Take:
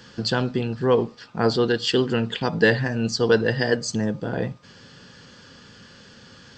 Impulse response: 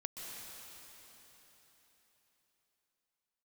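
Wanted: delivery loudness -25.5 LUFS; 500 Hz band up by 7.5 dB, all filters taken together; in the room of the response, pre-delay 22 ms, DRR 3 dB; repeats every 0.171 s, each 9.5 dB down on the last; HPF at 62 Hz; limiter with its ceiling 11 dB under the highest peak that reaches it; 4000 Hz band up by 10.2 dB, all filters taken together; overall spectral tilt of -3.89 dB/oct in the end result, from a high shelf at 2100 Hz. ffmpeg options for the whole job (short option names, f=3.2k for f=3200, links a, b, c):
-filter_complex "[0:a]highpass=62,equalizer=f=500:t=o:g=8,highshelf=f=2.1k:g=6.5,equalizer=f=4k:t=o:g=6.5,alimiter=limit=-9dB:level=0:latency=1,aecho=1:1:171|342|513|684:0.335|0.111|0.0365|0.012,asplit=2[a][b];[1:a]atrim=start_sample=2205,adelay=22[c];[b][c]afir=irnorm=-1:irlink=0,volume=-2.5dB[d];[a][d]amix=inputs=2:normalize=0,volume=-7.5dB"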